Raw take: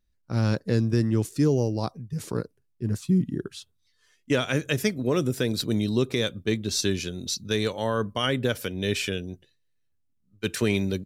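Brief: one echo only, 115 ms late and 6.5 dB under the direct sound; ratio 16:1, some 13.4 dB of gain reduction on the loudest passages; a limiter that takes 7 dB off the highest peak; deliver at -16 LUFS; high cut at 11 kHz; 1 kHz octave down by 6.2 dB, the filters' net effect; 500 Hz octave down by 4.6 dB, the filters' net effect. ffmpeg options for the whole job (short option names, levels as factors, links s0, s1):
-af "lowpass=11000,equalizer=f=500:t=o:g=-4.5,equalizer=f=1000:t=o:g=-7,acompressor=threshold=0.0251:ratio=16,alimiter=level_in=1.5:limit=0.0631:level=0:latency=1,volume=0.668,aecho=1:1:115:0.473,volume=13.3"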